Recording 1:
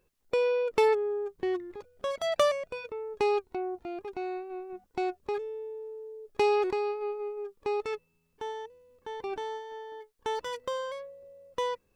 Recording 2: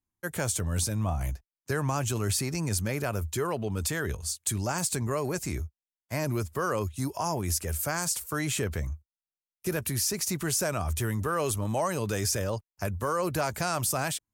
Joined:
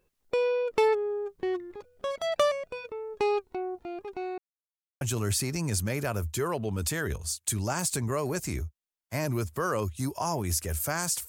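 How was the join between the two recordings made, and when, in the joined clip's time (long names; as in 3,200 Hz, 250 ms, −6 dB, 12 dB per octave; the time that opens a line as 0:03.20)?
recording 1
0:04.38–0:05.01: silence
0:05.01: continue with recording 2 from 0:02.00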